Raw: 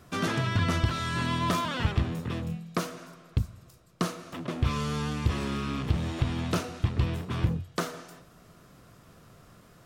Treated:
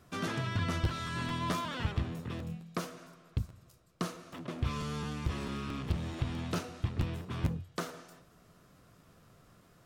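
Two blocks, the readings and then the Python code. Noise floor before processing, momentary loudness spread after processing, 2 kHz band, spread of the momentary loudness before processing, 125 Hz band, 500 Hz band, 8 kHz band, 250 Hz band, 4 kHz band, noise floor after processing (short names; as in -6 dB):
-56 dBFS, 8 LU, -6.5 dB, 8 LU, -6.5 dB, -6.5 dB, -6.5 dB, -6.5 dB, -6.5 dB, -62 dBFS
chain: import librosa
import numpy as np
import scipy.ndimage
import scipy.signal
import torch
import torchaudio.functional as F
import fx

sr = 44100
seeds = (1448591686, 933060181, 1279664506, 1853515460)

y = fx.buffer_crackle(x, sr, first_s=0.84, period_s=0.22, block=512, kind='repeat')
y = F.gain(torch.from_numpy(y), -6.5).numpy()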